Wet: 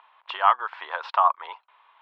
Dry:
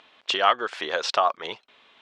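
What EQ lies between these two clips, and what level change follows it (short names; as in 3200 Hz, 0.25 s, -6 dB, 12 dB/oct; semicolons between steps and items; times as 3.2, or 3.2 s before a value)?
resonant high-pass 960 Hz, resonance Q 4.9; air absorption 400 m; -3.5 dB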